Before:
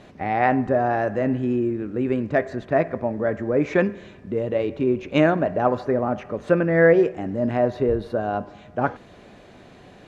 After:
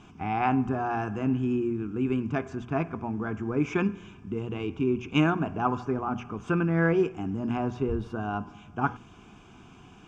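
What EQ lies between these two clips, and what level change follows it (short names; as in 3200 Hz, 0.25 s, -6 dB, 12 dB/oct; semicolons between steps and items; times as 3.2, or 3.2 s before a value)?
notches 60/120/180/240 Hz; fixed phaser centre 2800 Hz, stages 8; 0.0 dB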